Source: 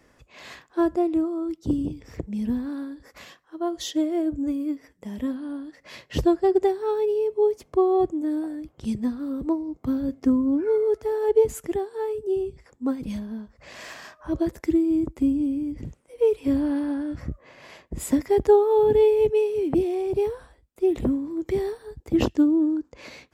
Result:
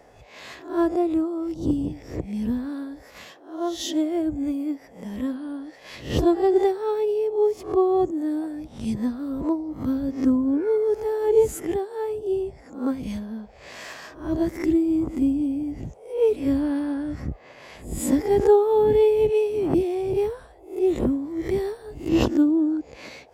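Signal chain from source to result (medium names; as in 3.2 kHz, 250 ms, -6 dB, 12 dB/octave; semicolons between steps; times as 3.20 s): reverse spectral sustain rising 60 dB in 0.42 s; band noise 400–820 Hz -54 dBFS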